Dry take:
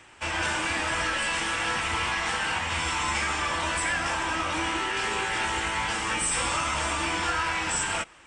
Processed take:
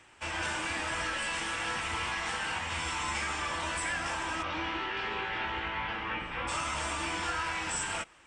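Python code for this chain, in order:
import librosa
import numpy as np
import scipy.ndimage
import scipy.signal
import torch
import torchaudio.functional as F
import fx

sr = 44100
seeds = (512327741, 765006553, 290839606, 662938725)

y = fx.lowpass(x, sr, hz=fx.line((4.42, 4800.0), (6.47, 2800.0)), slope=24, at=(4.42, 6.47), fade=0.02)
y = y * librosa.db_to_amplitude(-6.0)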